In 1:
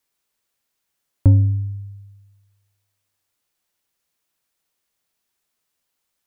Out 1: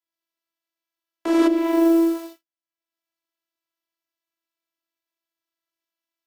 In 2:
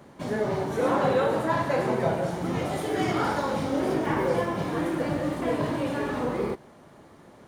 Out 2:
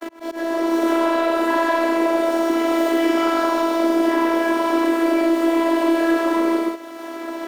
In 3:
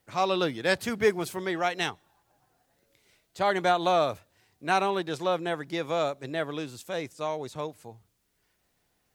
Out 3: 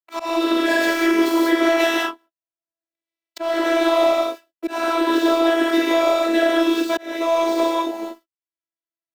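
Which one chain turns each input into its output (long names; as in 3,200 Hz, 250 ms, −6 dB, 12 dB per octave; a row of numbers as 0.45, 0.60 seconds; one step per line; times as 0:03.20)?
running median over 5 samples
parametric band 13,000 Hz +6.5 dB 0.22 octaves
leveller curve on the samples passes 2
downward compressor 5 to 1, threshold −21 dBFS
noise gate −47 dBFS, range −53 dB
Butterworth high-pass 240 Hz 72 dB per octave
reverb whose tail is shaped and stops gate 230 ms flat, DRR −6 dB
in parallel at −6 dB: soft clipping −17 dBFS
on the sum: volume swells 620 ms
phases set to zero 331 Hz
multiband upward and downward compressor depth 70%
loudness normalisation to −19 LKFS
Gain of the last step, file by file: +19.5, −1.5, +1.5 decibels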